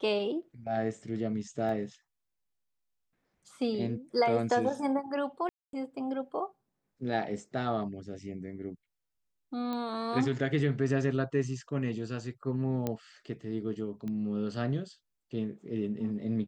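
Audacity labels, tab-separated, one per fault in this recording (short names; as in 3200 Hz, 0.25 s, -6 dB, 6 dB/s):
1.690000	1.690000	gap 2.5 ms
5.490000	5.730000	gap 0.242 s
9.730000	9.730000	pop -24 dBFS
12.870000	12.870000	pop -18 dBFS
14.080000	14.080000	pop -27 dBFS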